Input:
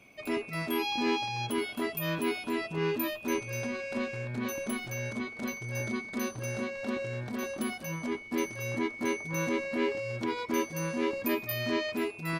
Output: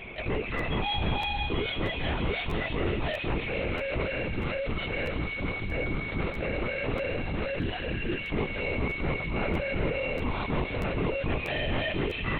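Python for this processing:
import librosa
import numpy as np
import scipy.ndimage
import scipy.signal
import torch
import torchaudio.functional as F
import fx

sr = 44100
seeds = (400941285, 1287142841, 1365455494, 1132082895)

y = fx.spec_repair(x, sr, seeds[0], start_s=7.55, length_s=0.62, low_hz=760.0, high_hz=2900.0, source='before')
y = fx.lpc_vocoder(y, sr, seeds[1], excitation='whisper', order=10)
y = fx.echo_wet_highpass(y, sr, ms=163, feedback_pct=80, hz=3000.0, wet_db=-5.0)
y = fx.buffer_crackle(y, sr, first_s=0.57, period_s=0.64, block=512, kind='repeat')
y = fx.env_flatten(y, sr, amount_pct=50)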